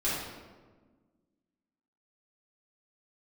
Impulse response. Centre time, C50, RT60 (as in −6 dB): 82 ms, −1.0 dB, 1.4 s